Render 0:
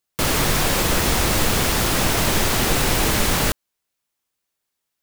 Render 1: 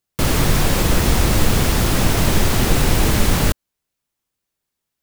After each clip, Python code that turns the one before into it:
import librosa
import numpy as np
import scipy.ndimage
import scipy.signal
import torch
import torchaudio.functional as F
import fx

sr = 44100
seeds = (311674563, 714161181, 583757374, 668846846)

y = fx.low_shelf(x, sr, hz=310.0, db=9.0)
y = y * librosa.db_to_amplitude(-1.5)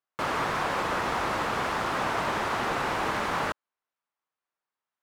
y = fx.bandpass_q(x, sr, hz=1100.0, q=1.4)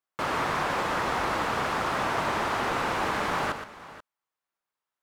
y = fx.echo_multitap(x, sr, ms=(119, 484), db=(-9.0, -16.5))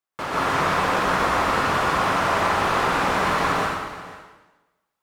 y = fx.rev_plate(x, sr, seeds[0], rt60_s=1.1, hf_ratio=0.95, predelay_ms=115, drr_db=-5.5)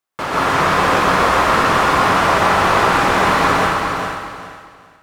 y = fx.echo_feedback(x, sr, ms=406, feedback_pct=24, wet_db=-6.0)
y = y * librosa.db_to_amplitude(6.0)